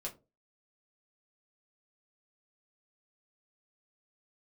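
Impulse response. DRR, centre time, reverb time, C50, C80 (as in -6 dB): -2.5 dB, 15 ms, no single decay rate, 16.0 dB, 22.5 dB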